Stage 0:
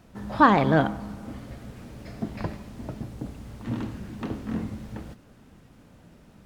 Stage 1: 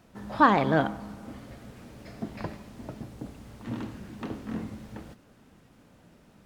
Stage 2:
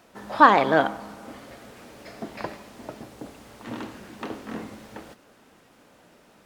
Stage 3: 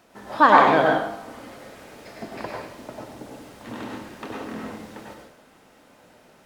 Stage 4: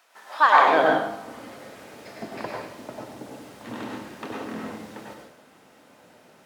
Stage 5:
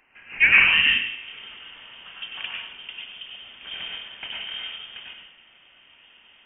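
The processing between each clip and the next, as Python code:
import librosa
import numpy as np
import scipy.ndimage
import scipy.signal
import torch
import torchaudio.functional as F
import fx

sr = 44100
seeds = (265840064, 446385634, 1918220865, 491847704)

y1 = fx.low_shelf(x, sr, hz=150.0, db=-6.5)
y1 = y1 * librosa.db_to_amplitude(-2.0)
y2 = fx.bass_treble(y1, sr, bass_db=-14, treble_db=0)
y2 = y2 * librosa.db_to_amplitude(6.0)
y3 = fx.rev_plate(y2, sr, seeds[0], rt60_s=0.6, hf_ratio=0.85, predelay_ms=85, drr_db=-1.5)
y3 = y3 * librosa.db_to_amplitude(-1.5)
y4 = fx.filter_sweep_highpass(y3, sr, from_hz=950.0, to_hz=94.0, start_s=0.51, end_s=1.09, q=0.71)
y5 = fx.freq_invert(y4, sr, carrier_hz=3400)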